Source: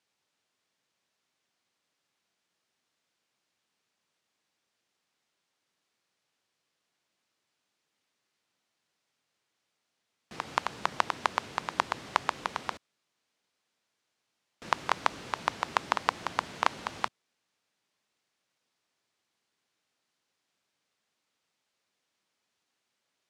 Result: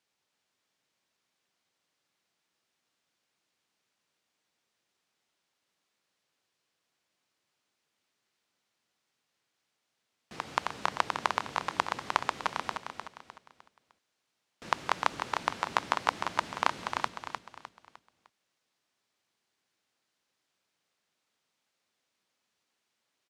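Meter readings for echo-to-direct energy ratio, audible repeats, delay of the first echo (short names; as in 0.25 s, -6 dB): -6.0 dB, 4, 0.304 s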